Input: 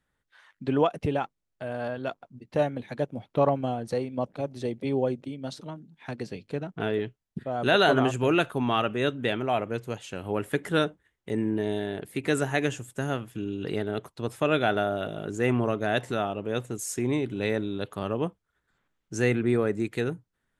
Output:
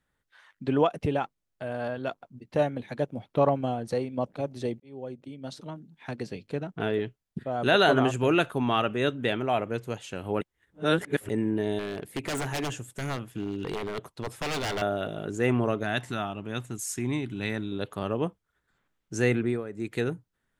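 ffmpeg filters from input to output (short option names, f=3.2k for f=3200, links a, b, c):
-filter_complex "[0:a]asettb=1/sr,asplit=3[a][b][c];[a]atrim=end=11.794[d];[b]atrim=start=11.79:end=14.82,asetpts=PTS-STARTPTS,afade=t=in:d=0.004:c=qsin,afade=t=out:st=3.026:d=0.004:c=qsin,aeval=exprs='0.0562*(abs(mod(val(0)/0.0562+3,4)-2)-1)':c=same[e];[c]atrim=start=14.816[f];[d][e]acrossfade=d=0.004:c1=hsin:c2=qsin[g];[g][f]acrossfade=d=0.004:c1=qsin:c2=hsin,asettb=1/sr,asplit=3[h][i][j];[h]atrim=end=15.834[k];[i]atrim=start=15.83:end=17.72,asetpts=PTS-STARTPTS,afade=t=in:d=0.004:c=qsin,afade=t=out:st=1.886:d=0.004:c=qsin,equalizer=f=490:w=1.8:g=-11.5[l];[j]atrim=start=17.716[m];[k][l]acrossfade=d=0.004:c1=hsin:c2=qsin[n];[n][m]acrossfade=d=0.004:c1=qsin:c2=hsin,asplit=6[o][p][q][r][s][t];[o]atrim=end=4.8,asetpts=PTS-STARTPTS,afade=t=out:st=4.796:d=0.004:c=hsin[u];[p]atrim=start=4.8:end=10.412,asetpts=PTS-STARTPTS,afade=t=in:d=0.95[v];[q]atrim=start=10.408:end=11.292,asetpts=PTS-STARTPTS,areverse[w];[r]atrim=start=11.288:end=19.64,asetpts=PTS-STARTPTS,afade=t=out:st=8.102:d=0.25:silence=0.251189[x];[s]atrim=start=19.64:end=19.71,asetpts=PTS-STARTPTS,volume=-12dB[y];[t]atrim=start=19.71,asetpts=PTS-STARTPTS,afade=t=in:d=0.25:silence=0.251189[z];[u][v]concat=n=2:v=0:a=1[aa];[aa][w]acrossfade=d=0.004:c1=hsin:c2=hsin[ab];[x][y][z]concat=n=3:v=0:a=1[ac];[ab][ac]acrossfade=d=0.004:c1=hsin:c2=hsin"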